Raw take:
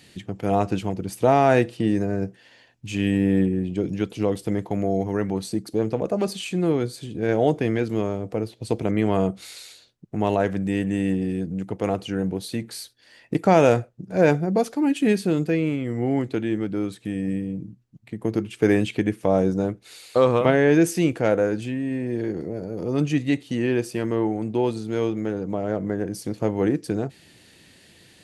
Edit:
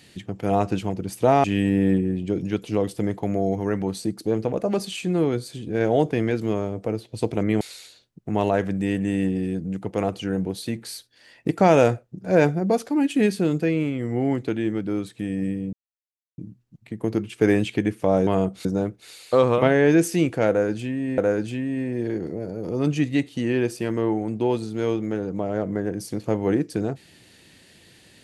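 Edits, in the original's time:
0:01.44–0:02.92: remove
0:09.09–0:09.47: move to 0:19.48
0:17.59: splice in silence 0.65 s
0:21.32–0:22.01: repeat, 2 plays

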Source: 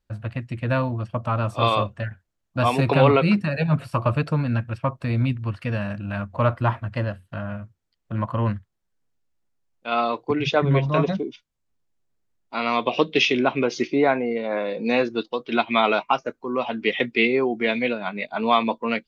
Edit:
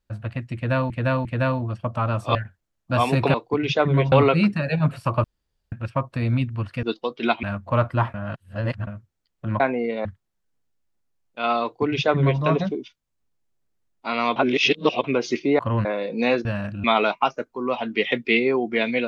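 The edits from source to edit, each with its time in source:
0:00.55–0:00.90: repeat, 3 plays
0:01.65–0:02.01: remove
0:04.12–0:04.60: fill with room tone
0:05.71–0:06.10: swap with 0:15.12–0:15.72
0:06.81–0:07.54: reverse
0:08.27–0:08.53: swap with 0:14.07–0:14.52
0:10.11–0:10.89: duplicate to 0:03.00
0:12.84–0:13.52: reverse

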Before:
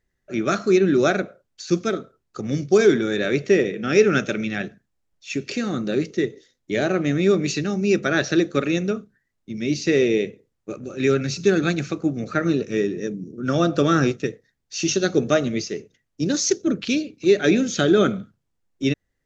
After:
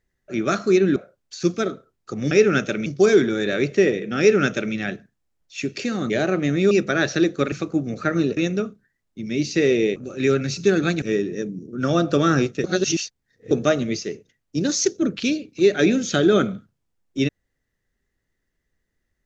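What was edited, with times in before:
0:00.96–0:01.23: remove
0:03.91–0:04.46: duplicate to 0:02.58
0:05.82–0:06.72: remove
0:07.33–0:07.87: remove
0:10.27–0:10.76: remove
0:11.82–0:12.67: move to 0:08.68
0:14.29–0:15.16: reverse

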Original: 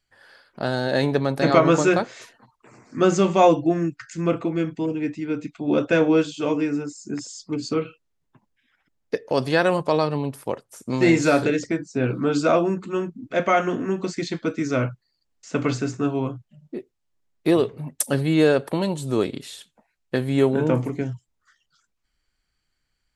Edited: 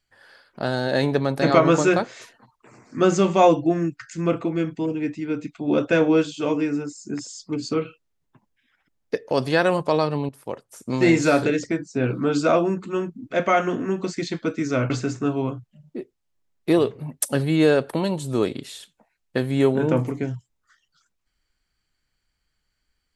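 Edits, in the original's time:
0:10.29–0:10.93: fade in equal-power, from −12 dB
0:14.90–0:15.68: remove

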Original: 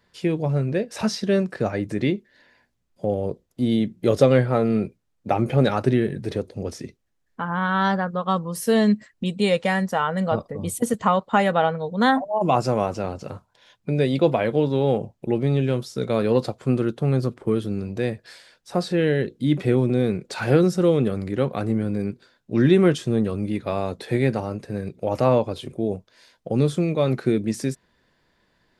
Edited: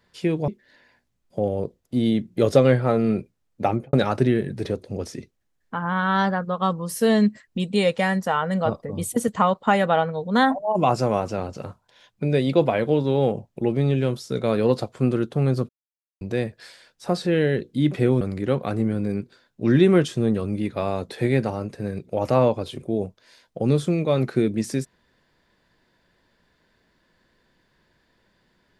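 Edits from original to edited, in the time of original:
0:00.48–0:02.14: remove
0:05.33–0:05.59: fade out and dull
0:17.35–0:17.87: silence
0:19.87–0:21.11: remove

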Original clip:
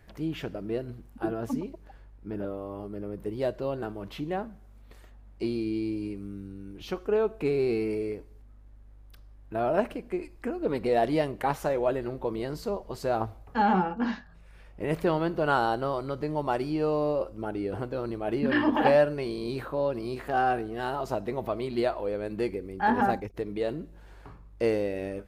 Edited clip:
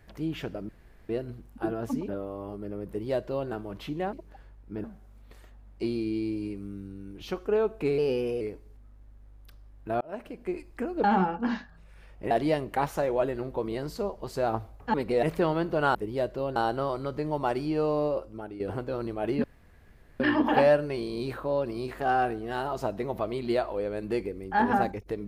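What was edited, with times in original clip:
0:00.69: splice in room tone 0.40 s
0:01.68–0:02.39: move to 0:04.44
0:03.19–0:03.80: duplicate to 0:15.60
0:07.58–0:08.06: play speed 112%
0:09.66–0:10.19: fade in
0:10.69–0:10.98: swap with 0:13.61–0:14.88
0:17.10–0:17.64: fade out, to −10.5 dB
0:18.48: splice in room tone 0.76 s

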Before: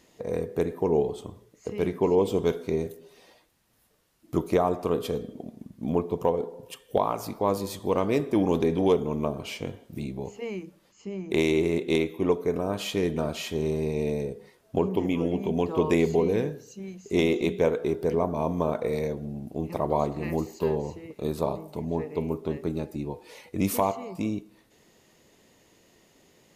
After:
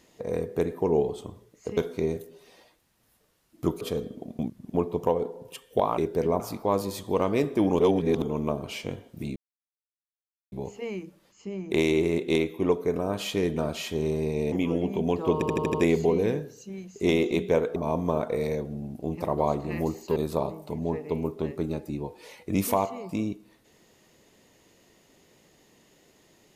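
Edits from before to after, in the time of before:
0:01.77–0:02.47: remove
0:04.51–0:04.99: remove
0:05.57–0:05.92: reverse
0:08.55–0:08.98: reverse
0:10.12: splice in silence 1.16 s
0:14.12–0:15.02: remove
0:15.84: stutter 0.08 s, 6 plays
0:17.86–0:18.28: move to 0:07.16
0:20.68–0:21.22: remove

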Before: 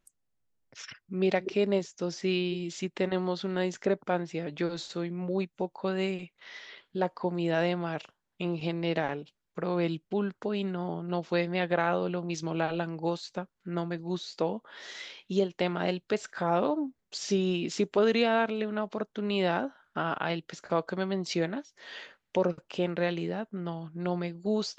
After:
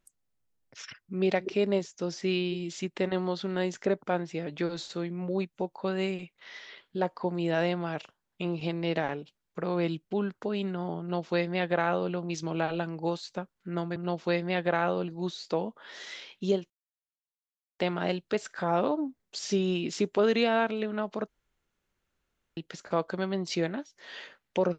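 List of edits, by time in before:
0:11.01–0:12.13: duplicate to 0:13.96
0:15.58: splice in silence 1.09 s
0:19.07–0:20.36: fill with room tone

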